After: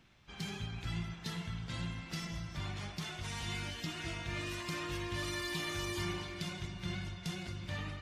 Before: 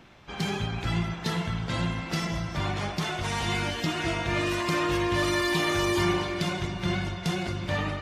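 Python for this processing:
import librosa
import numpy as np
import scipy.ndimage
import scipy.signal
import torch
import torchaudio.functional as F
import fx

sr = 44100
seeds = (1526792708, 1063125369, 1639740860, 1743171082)

y = fx.peak_eq(x, sr, hz=600.0, db=-9.0, octaves=2.9)
y = F.gain(torch.from_numpy(y), -8.0).numpy()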